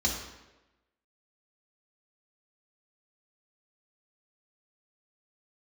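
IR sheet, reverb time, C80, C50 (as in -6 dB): 1.1 s, 6.5 dB, 4.5 dB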